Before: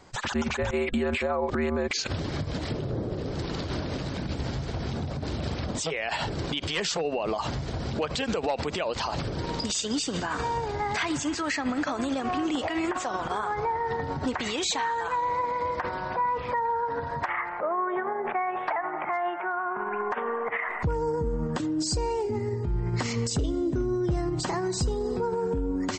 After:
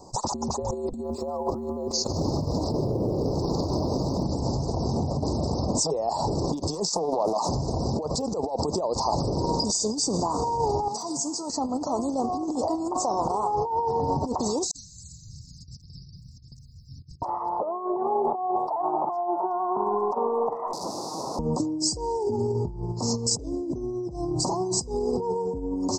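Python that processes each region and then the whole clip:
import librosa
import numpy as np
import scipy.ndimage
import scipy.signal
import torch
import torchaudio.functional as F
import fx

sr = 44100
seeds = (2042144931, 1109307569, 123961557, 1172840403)

y = fx.chain(x, sr, fx.lowpass(hz=6800.0, slope=12),
    fx.echo_feedback(ms=151, feedback_pct=30, wet_db=-13.5),
    fx.quant_float(bits=6), at=(1.03, 4.23))
y = fx.chain(y, sr, fx.cheby1_highpass(hz=170.0, order=5),
    fx.high_shelf(hz=3800.0, db=6.0),
    fx.doppler_dist(depth_ms=0.42), at=(6.9, 7.49))
y = fx.chain(y, sr, fx.highpass(hz=130.0, slope=24),
    fx.high_shelf(hz=3000.0, db=9.0),
    fx.comb_fb(f0_hz=230.0, decay_s=0.8, harmonics='all', damping=0.0, mix_pct=70), at=(10.88, 11.5))
y = fx.chain(y, sr, fx.cheby2_bandstop(low_hz=500.0, high_hz=1200.0, order=4, stop_db=80),
    fx.over_compress(threshold_db=-48.0, ratio=-0.5), at=(14.71, 17.22))
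y = fx.chain(y, sr, fx.overflow_wrap(gain_db=30.0),
    fx.bandpass_edges(low_hz=160.0, high_hz=4800.0), at=(20.73, 21.39))
y = fx.over_compress(y, sr, threshold_db=-30.0, ratio=-0.5)
y = scipy.signal.sosfilt(scipy.signal.ellip(3, 1.0, 40, [960.0, 5000.0], 'bandstop', fs=sr, output='sos'), y)
y = fx.low_shelf(y, sr, hz=150.0, db=-7.0)
y = F.gain(torch.from_numpy(y), 7.0).numpy()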